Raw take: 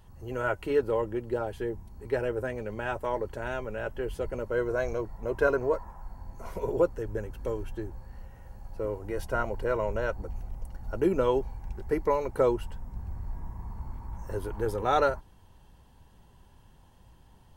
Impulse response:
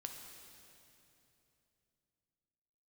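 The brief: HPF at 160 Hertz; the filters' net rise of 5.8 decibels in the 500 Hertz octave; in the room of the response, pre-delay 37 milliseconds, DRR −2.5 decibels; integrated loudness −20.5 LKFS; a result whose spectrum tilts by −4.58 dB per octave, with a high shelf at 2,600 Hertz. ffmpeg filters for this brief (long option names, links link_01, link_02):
-filter_complex "[0:a]highpass=160,equalizer=frequency=500:width_type=o:gain=6.5,highshelf=frequency=2600:gain=4.5,asplit=2[link_01][link_02];[1:a]atrim=start_sample=2205,adelay=37[link_03];[link_02][link_03]afir=irnorm=-1:irlink=0,volume=5.5dB[link_04];[link_01][link_04]amix=inputs=2:normalize=0,volume=1.5dB"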